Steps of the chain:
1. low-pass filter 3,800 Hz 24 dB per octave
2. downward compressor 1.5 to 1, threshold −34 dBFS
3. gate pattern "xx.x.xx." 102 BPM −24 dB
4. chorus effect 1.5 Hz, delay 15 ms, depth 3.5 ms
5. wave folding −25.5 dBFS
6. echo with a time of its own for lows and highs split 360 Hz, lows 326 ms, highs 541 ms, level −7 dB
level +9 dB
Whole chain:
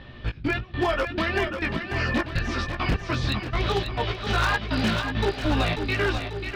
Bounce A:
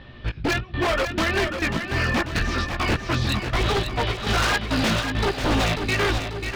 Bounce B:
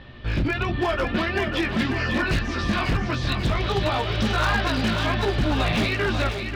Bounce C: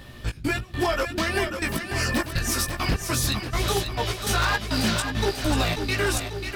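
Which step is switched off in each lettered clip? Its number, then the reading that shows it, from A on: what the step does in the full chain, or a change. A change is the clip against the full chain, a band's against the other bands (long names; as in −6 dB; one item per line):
2, average gain reduction 4.0 dB
3, change in momentary loudness spread −1 LU
1, 8 kHz band +16.0 dB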